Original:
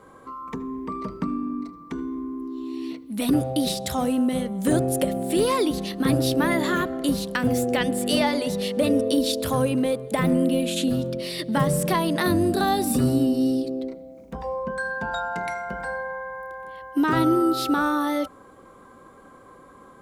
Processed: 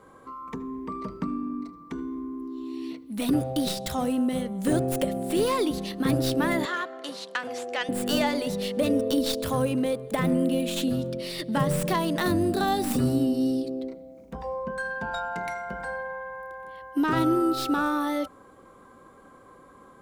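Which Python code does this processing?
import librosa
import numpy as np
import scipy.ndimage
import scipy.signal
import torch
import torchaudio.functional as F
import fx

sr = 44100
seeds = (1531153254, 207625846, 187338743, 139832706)

y = fx.tracing_dist(x, sr, depth_ms=0.083)
y = fx.bandpass_edges(y, sr, low_hz=640.0, high_hz=6300.0, at=(6.65, 7.89))
y = y * 10.0 ** (-3.0 / 20.0)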